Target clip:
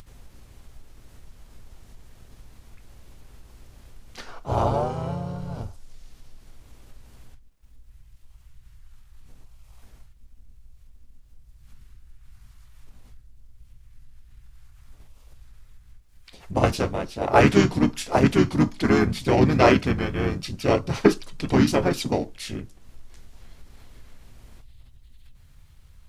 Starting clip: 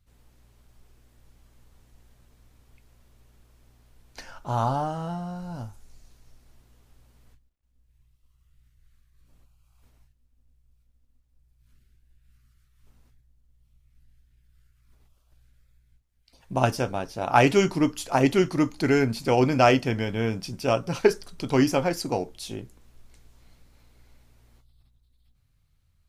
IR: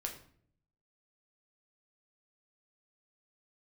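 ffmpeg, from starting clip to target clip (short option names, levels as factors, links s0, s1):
-filter_complex "[0:a]acompressor=mode=upward:threshold=0.00891:ratio=2.5,asplit=4[s0][s1][s2][s3];[s1]asetrate=22050,aresample=44100,atempo=2,volume=0.562[s4];[s2]asetrate=29433,aresample=44100,atempo=1.49831,volume=0.447[s5];[s3]asetrate=35002,aresample=44100,atempo=1.25992,volume=0.891[s6];[s0][s4][s5][s6]amix=inputs=4:normalize=0,volume=0.891"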